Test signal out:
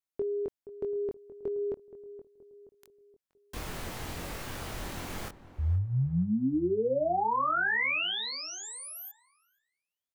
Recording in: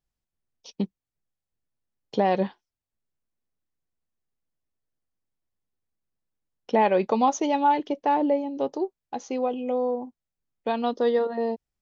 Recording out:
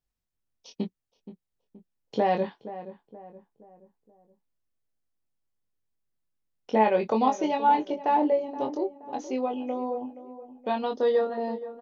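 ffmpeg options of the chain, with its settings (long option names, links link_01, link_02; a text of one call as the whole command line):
ffmpeg -i in.wav -filter_complex "[0:a]asplit=2[link_01][link_02];[link_02]adelay=23,volume=-4.5dB[link_03];[link_01][link_03]amix=inputs=2:normalize=0,acrossover=split=3000[link_04][link_05];[link_05]acompressor=threshold=-40dB:ratio=4:attack=1:release=60[link_06];[link_04][link_06]amix=inputs=2:normalize=0,asplit=2[link_07][link_08];[link_08]adelay=474,lowpass=frequency=1200:poles=1,volume=-13.5dB,asplit=2[link_09][link_10];[link_10]adelay=474,lowpass=frequency=1200:poles=1,volume=0.46,asplit=2[link_11][link_12];[link_12]adelay=474,lowpass=frequency=1200:poles=1,volume=0.46,asplit=2[link_13][link_14];[link_14]adelay=474,lowpass=frequency=1200:poles=1,volume=0.46[link_15];[link_07][link_09][link_11][link_13][link_15]amix=inputs=5:normalize=0,volume=-3dB" out.wav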